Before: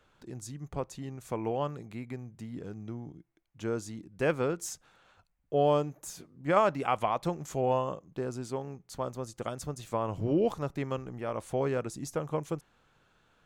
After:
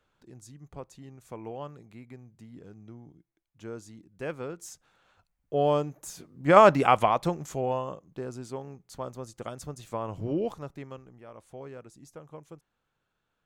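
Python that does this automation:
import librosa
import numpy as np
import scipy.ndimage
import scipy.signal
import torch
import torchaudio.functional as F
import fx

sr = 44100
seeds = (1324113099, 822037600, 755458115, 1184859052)

y = fx.gain(x, sr, db=fx.line((4.48, -7.0), (5.67, 1.0), (6.17, 1.0), (6.7, 10.5), (7.75, -2.0), (10.34, -2.0), (11.25, -13.0)))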